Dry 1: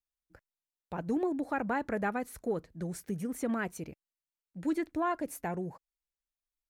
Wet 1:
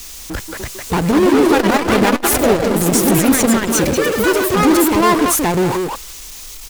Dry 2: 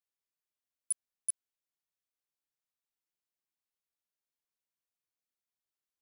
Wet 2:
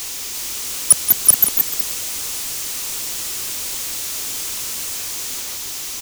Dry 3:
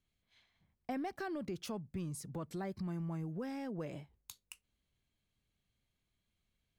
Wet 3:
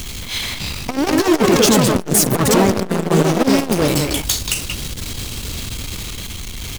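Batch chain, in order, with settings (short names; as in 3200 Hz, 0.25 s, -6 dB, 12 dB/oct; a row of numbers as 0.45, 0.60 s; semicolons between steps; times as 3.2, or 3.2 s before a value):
fifteen-band EQ 160 Hz -6 dB, 630 Hz -10 dB, 1600 Hz -7 dB, 6300 Hz +5 dB; speakerphone echo 0.18 s, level -11 dB; power-law curve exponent 0.35; echoes that change speed 0.344 s, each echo +3 st, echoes 3; core saturation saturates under 280 Hz; normalise peaks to -2 dBFS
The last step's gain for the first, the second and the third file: +16.5, +20.5, +20.5 dB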